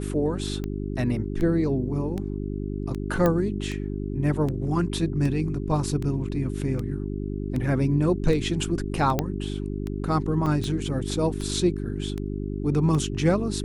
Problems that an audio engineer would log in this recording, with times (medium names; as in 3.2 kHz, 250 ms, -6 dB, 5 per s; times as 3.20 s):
hum 50 Hz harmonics 8 -30 dBFS
tick 78 rpm -19 dBFS
3.26 s: pop -10 dBFS
9.19 s: pop -9 dBFS
10.46–10.47 s: dropout 5.2 ms